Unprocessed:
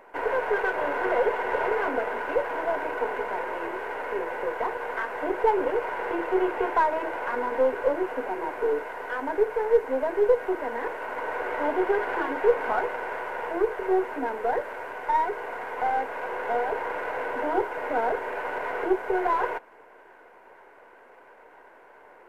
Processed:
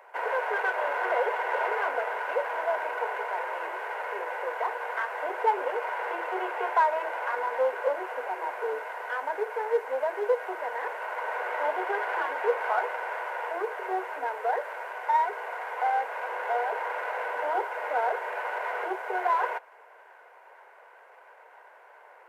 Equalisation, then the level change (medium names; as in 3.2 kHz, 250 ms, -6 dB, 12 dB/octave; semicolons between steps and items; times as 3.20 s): high-pass 530 Hz 24 dB/octave; 0.0 dB